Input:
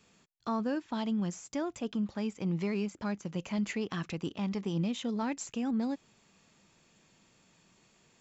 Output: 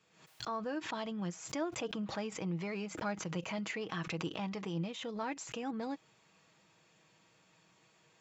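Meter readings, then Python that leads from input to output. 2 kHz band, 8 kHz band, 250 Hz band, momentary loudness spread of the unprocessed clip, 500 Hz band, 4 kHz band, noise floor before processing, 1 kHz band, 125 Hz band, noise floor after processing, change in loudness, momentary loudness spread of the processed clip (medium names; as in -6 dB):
+1.0 dB, no reading, -7.5 dB, 4 LU, -2.0 dB, +0.5 dB, -67 dBFS, -0.5 dB, -5.0 dB, -69 dBFS, -4.5 dB, 3 LU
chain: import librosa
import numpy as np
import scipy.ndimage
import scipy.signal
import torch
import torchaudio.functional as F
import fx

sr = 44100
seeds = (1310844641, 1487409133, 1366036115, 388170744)

y = scipy.signal.sosfilt(scipy.signal.butter(2, 98.0, 'highpass', fs=sr, output='sos'), x)
y = fx.peak_eq(y, sr, hz=220.0, db=-8.0, octaves=1.5)
y = y + 0.41 * np.pad(y, (int(6.3 * sr / 1000.0), 0))[:len(y)]
y = fx.rider(y, sr, range_db=10, speed_s=0.5)
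y = fx.high_shelf(y, sr, hz=5200.0, db=-10.0)
y = fx.pre_swell(y, sr, db_per_s=88.0)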